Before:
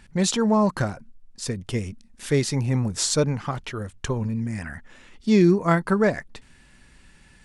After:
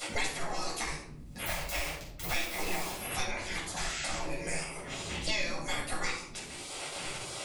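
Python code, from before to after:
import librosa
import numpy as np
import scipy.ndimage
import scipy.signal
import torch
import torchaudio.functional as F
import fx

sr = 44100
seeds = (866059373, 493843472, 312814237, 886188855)

y = fx.delta_hold(x, sr, step_db=-37.0, at=(1.46, 2.94))
y = fx.spec_gate(y, sr, threshold_db=-25, keep='weak')
y = fx.peak_eq(y, sr, hz=1200.0, db=-6.5, octaves=1.2)
y = fx.spec_paint(y, sr, seeds[0], shape='noise', start_s=3.76, length_s=0.42, low_hz=1300.0, high_hz=8200.0, level_db=-49.0)
y = fx.room_shoebox(y, sr, seeds[1], volume_m3=530.0, walls='furnished', distance_m=6.8)
y = fx.band_squash(y, sr, depth_pct=100)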